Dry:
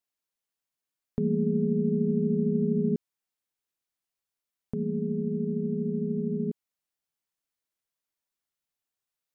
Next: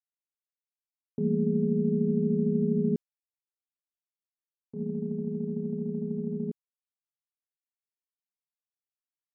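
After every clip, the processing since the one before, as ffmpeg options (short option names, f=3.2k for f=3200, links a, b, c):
-af "agate=range=-33dB:threshold=-25dB:ratio=3:detection=peak"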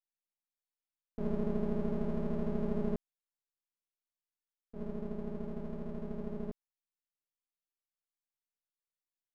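-af "aeval=exprs='max(val(0),0)':c=same,volume=-4dB"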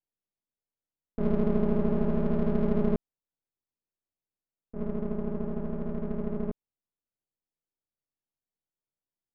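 -af "adynamicsmooth=sensitivity=7.5:basefreq=710,volume=8dB"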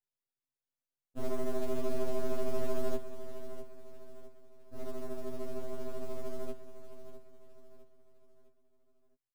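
-af "aecho=1:1:657|1314|1971|2628:0.266|0.112|0.0469|0.0197,acrusher=bits=6:mode=log:mix=0:aa=0.000001,afftfilt=real='re*2.45*eq(mod(b,6),0)':imag='im*2.45*eq(mod(b,6),0)':win_size=2048:overlap=0.75,volume=-2dB"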